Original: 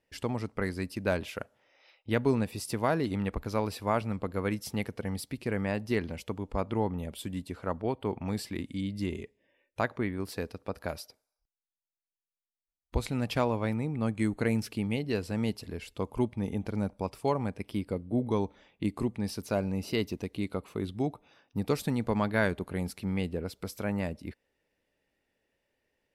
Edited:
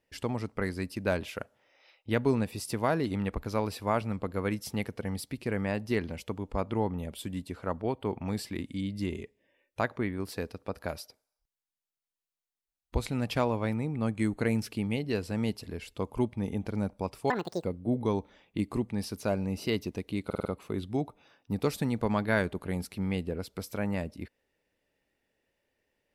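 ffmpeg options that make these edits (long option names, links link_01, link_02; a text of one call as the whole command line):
ffmpeg -i in.wav -filter_complex "[0:a]asplit=7[link_01][link_02][link_03][link_04][link_05][link_06][link_07];[link_01]atrim=end=17.304[link_08];[link_02]atrim=start=17.3:end=17.9,asetpts=PTS-STARTPTS,asetrate=77175,aresample=44100[link_09];[link_03]atrim=start=17.896:end=20.562[link_10];[link_04]atrim=start=20.508:end=20.562[link_11];[link_05]atrim=start=20.508:end=20.562[link_12];[link_06]atrim=start=20.508:end=20.562[link_13];[link_07]atrim=start=20.508[link_14];[link_08][link_09]acrossfade=duration=0.004:curve1=hsin:curve2=hsin[link_15];[link_15][link_10]acrossfade=duration=0.004:curve1=hsin:curve2=hsin[link_16];[link_16][link_11]acrossfade=duration=0.004:curve1=hsin:curve2=hsin[link_17];[link_17][link_12]acrossfade=duration=0.004:curve1=hsin:curve2=hsin[link_18];[link_18][link_13]acrossfade=duration=0.004:curve1=hsin:curve2=hsin[link_19];[link_19][link_14]acrossfade=duration=0.004:curve1=hsin:curve2=hsin" out.wav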